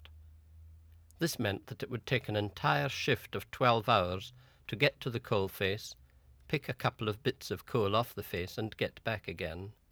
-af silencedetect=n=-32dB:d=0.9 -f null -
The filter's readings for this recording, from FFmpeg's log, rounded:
silence_start: 0.00
silence_end: 1.22 | silence_duration: 1.22